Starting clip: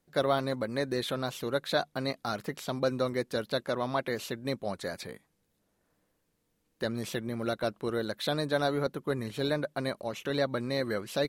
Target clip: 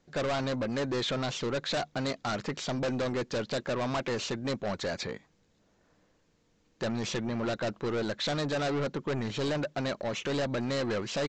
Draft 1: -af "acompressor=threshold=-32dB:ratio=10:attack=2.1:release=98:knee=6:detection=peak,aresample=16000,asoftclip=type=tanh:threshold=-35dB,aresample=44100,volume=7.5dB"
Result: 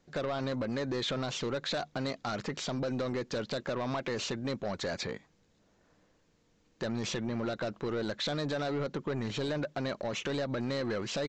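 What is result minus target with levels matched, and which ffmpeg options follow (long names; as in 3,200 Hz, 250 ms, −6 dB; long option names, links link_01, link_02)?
downward compressor: peak gain reduction +13 dB
-af "aresample=16000,asoftclip=type=tanh:threshold=-35dB,aresample=44100,volume=7.5dB"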